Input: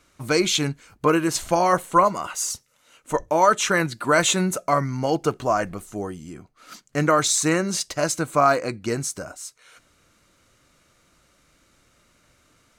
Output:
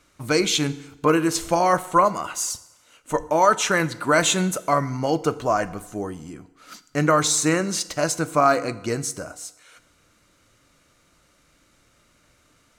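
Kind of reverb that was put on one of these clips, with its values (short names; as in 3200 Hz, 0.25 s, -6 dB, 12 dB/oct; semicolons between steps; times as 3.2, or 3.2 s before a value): FDN reverb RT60 1 s, low-frequency decay 0.9×, high-frequency decay 0.85×, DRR 14 dB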